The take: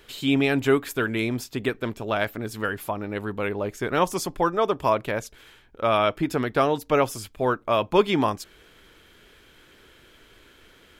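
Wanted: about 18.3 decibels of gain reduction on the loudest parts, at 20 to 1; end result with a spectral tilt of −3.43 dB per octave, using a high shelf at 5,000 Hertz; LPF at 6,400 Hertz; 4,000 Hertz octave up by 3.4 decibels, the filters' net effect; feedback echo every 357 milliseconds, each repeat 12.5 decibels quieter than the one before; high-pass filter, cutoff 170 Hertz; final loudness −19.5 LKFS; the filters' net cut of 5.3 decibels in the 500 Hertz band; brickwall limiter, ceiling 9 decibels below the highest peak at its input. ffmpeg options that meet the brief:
ffmpeg -i in.wav -af "highpass=170,lowpass=6400,equalizer=frequency=500:width_type=o:gain=-7,equalizer=frequency=4000:width_type=o:gain=3,highshelf=frequency=5000:gain=5,acompressor=threshold=-36dB:ratio=20,alimiter=level_in=8dB:limit=-24dB:level=0:latency=1,volume=-8dB,aecho=1:1:357|714|1071:0.237|0.0569|0.0137,volume=25dB" out.wav

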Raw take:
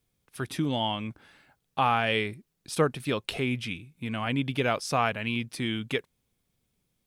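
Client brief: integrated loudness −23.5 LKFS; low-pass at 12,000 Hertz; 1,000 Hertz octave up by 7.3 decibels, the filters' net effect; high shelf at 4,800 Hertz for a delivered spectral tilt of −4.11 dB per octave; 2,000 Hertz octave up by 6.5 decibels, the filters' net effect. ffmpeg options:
ffmpeg -i in.wav -af "lowpass=12000,equalizer=frequency=1000:width_type=o:gain=8,equalizer=frequency=2000:width_type=o:gain=5,highshelf=frequency=4800:gain=6,volume=1dB" out.wav

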